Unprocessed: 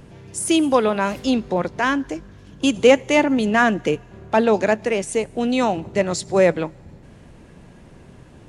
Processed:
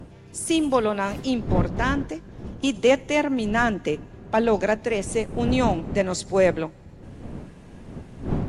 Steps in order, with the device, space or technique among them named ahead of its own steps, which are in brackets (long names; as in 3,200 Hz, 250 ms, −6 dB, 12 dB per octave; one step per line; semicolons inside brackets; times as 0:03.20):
smartphone video outdoors (wind on the microphone 230 Hz −28 dBFS; automatic gain control gain up to 3.5 dB; level −5 dB; AAC 64 kbit/s 44,100 Hz)